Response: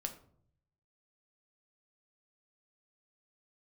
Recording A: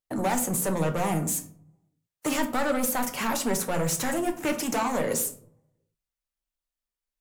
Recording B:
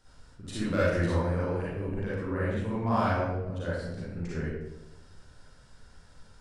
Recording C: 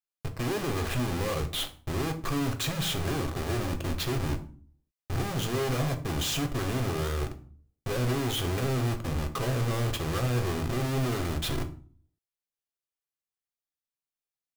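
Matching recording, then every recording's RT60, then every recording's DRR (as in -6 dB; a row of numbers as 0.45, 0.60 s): A; 0.60, 0.95, 0.45 s; 5.0, -9.0, 6.0 dB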